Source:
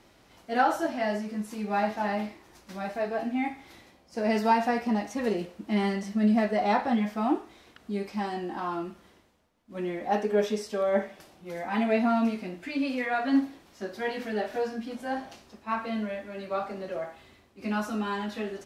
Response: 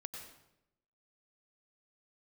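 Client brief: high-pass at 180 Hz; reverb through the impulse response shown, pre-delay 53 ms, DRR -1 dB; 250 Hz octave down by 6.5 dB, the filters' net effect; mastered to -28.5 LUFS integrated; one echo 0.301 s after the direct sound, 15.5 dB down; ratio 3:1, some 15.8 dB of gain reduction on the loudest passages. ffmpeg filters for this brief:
-filter_complex "[0:a]highpass=180,equalizer=f=250:t=o:g=-6,acompressor=threshold=-41dB:ratio=3,aecho=1:1:301:0.168,asplit=2[a][b];[1:a]atrim=start_sample=2205,adelay=53[c];[b][c]afir=irnorm=-1:irlink=0,volume=4dB[d];[a][d]amix=inputs=2:normalize=0,volume=10dB"

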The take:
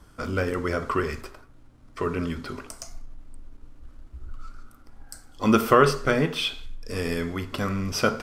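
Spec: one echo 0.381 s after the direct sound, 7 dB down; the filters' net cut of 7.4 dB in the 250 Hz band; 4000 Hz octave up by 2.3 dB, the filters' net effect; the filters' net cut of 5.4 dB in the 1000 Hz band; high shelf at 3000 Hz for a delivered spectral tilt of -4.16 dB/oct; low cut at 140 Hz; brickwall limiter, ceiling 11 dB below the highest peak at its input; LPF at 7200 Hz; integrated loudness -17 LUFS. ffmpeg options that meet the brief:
-af "highpass=140,lowpass=7.2k,equalizer=f=250:t=o:g=-8.5,equalizer=f=1k:t=o:g=-6.5,highshelf=f=3k:g=-6,equalizer=f=4k:t=o:g=8.5,alimiter=limit=-19dB:level=0:latency=1,aecho=1:1:381:0.447,volume=15dB"

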